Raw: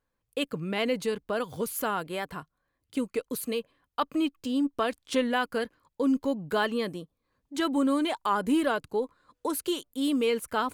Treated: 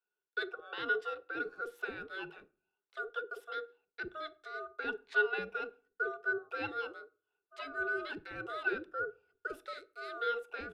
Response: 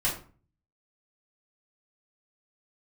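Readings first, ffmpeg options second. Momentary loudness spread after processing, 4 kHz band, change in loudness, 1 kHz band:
11 LU, -12.5 dB, -8.5 dB, -8.5 dB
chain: -filter_complex "[0:a]asplit=3[s0][s1][s2];[s0]bandpass=f=530:t=q:w=8,volume=1[s3];[s1]bandpass=f=1840:t=q:w=8,volume=0.501[s4];[s2]bandpass=f=2480:t=q:w=8,volume=0.355[s5];[s3][s4][s5]amix=inputs=3:normalize=0,aeval=exprs='val(0)*sin(2*PI*940*n/s)':c=same,acrossover=split=480[s6][s7];[s6]adelay=50[s8];[s8][s7]amix=inputs=2:normalize=0,asplit=2[s9][s10];[1:a]atrim=start_sample=2205[s11];[s10][s11]afir=irnorm=-1:irlink=0,volume=0.0708[s12];[s9][s12]amix=inputs=2:normalize=0,volume=1.58"

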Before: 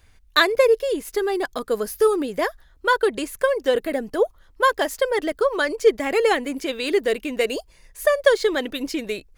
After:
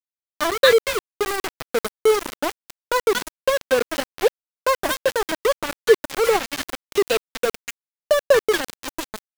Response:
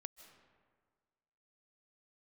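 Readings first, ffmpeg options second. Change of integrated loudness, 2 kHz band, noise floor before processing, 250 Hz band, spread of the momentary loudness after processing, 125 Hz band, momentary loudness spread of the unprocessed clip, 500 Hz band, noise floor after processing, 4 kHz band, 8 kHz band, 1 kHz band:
0.0 dB, -1.0 dB, -54 dBFS, -5.0 dB, 11 LU, no reading, 8 LU, 0.0 dB, under -85 dBFS, +1.5 dB, +5.5 dB, -0.5 dB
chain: -filter_complex "[0:a]acrossover=split=1300|5800[s0][s1][s2];[s0]adelay=40[s3];[s1]adelay=270[s4];[s3][s4][s2]amix=inputs=3:normalize=0,aeval=exprs='val(0)*gte(abs(val(0)),0.106)':c=same,volume=1.19"

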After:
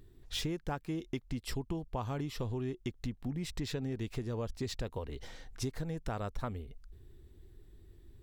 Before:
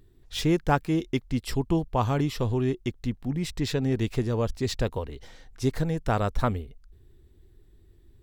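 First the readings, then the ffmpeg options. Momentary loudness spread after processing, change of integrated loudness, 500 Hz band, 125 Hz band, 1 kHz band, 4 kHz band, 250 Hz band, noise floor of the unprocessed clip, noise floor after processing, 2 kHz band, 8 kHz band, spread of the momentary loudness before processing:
8 LU, -11.0 dB, -11.5 dB, -11.0 dB, -13.0 dB, -7.0 dB, -11.0 dB, -57 dBFS, -60 dBFS, -11.0 dB, -6.5 dB, 7 LU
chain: -af "acompressor=threshold=0.02:ratio=6"

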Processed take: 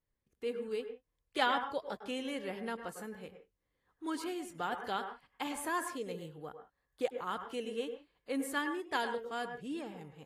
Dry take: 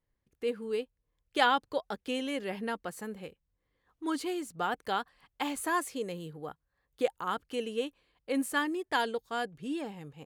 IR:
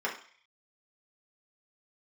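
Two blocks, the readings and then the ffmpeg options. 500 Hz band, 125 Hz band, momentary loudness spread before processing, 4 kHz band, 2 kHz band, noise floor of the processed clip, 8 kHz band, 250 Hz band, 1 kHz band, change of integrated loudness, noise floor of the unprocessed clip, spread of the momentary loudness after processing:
-4.0 dB, -4.5 dB, 12 LU, -4.5 dB, -4.0 dB, -84 dBFS, -4.0 dB, -4.5 dB, -4.5 dB, -4.5 dB, -82 dBFS, 12 LU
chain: -filter_complex "[0:a]asplit=2[s0][s1];[s1]highshelf=f=3200:g=-6.5[s2];[1:a]atrim=start_sample=2205,atrim=end_sample=3528,adelay=100[s3];[s2][s3]afir=irnorm=-1:irlink=0,volume=0.2[s4];[s0][s4]amix=inputs=2:normalize=0,volume=0.562" -ar 32000 -c:a aac -b:a 48k

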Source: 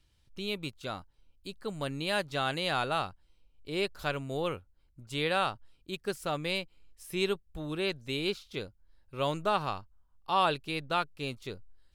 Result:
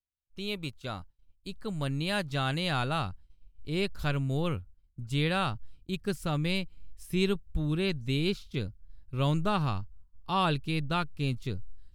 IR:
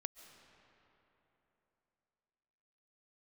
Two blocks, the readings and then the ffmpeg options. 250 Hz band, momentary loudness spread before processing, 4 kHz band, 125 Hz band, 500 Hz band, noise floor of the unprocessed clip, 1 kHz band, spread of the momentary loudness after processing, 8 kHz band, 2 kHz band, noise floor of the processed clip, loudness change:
+6.0 dB, 16 LU, 0.0 dB, +10.5 dB, -1.0 dB, -68 dBFS, -2.0 dB, 14 LU, 0.0 dB, -0.5 dB, -67 dBFS, +1.5 dB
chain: -af "asubboost=boost=5:cutoff=230,agate=range=0.0224:threshold=0.00794:ratio=3:detection=peak"

